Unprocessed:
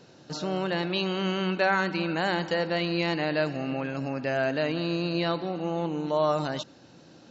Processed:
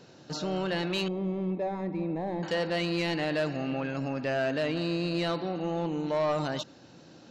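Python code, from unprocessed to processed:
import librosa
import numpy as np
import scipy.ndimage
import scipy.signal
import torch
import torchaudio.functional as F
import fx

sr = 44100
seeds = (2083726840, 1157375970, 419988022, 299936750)

y = 10.0 ** (-21.5 / 20.0) * np.tanh(x / 10.0 ** (-21.5 / 20.0))
y = fx.moving_average(y, sr, points=30, at=(1.08, 2.43))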